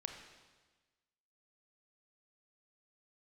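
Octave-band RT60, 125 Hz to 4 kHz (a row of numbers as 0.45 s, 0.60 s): 1.4 s, 1.4 s, 1.3 s, 1.3 s, 1.3 s, 1.3 s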